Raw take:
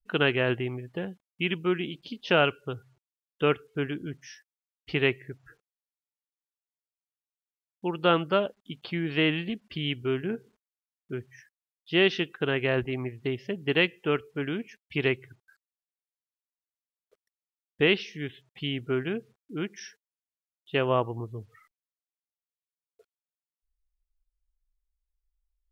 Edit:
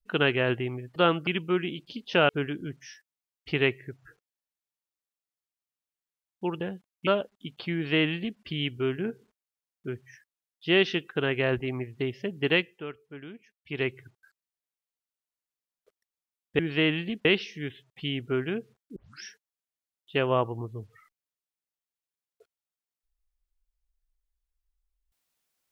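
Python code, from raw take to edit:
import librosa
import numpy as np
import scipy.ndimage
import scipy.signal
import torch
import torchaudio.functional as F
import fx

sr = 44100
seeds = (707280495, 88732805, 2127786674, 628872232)

y = fx.edit(x, sr, fx.swap(start_s=0.96, length_s=0.47, other_s=8.01, other_length_s=0.31),
    fx.cut(start_s=2.45, length_s=1.25),
    fx.duplicate(start_s=8.99, length_s=0.66, to_s=17.84),
    fx.fade_down_up(start_s=13.78, length_s=1.43, db=-12.0, fade_s=0.32),
    fx.tape_start(start_s=19.55, length_s=0.27), tone=tone)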